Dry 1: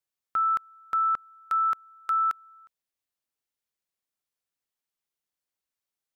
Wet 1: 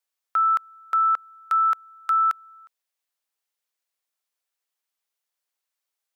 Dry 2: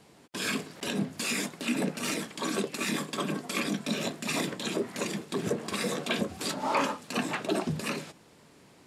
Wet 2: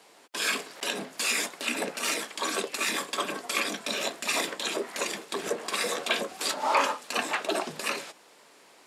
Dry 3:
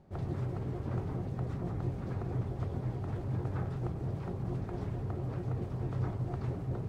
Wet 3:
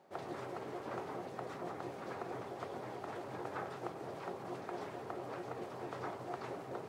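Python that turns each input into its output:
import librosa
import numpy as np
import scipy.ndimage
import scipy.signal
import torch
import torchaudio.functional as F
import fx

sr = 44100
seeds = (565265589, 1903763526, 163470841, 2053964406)

y = scipy.signal.sosfilt(scipy.signal.butter(2, 520.0, 'highpass', fs=sr, output='sos'), x)
y = y * 10.0 ** (4.5 / 20.0)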